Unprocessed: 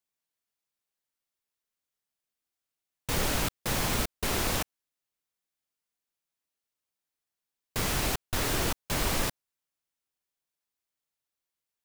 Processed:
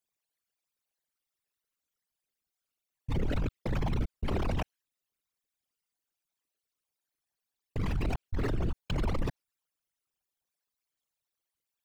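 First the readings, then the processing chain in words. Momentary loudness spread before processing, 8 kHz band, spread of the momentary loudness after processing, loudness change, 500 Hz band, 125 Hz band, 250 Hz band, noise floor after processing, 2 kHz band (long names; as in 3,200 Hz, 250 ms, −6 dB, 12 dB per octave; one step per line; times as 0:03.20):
5 LU, −24.5 dB, 5 LU, −5.0 dB, −3.0 dB, +2.5 dB, −0.5 dB, below −85 dBFS, −10.5 dB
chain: spectral envelope exaggerated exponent 3
dynamic equaliser 2,800 Hz, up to +6 dB, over −57 dBFS, Q 0.76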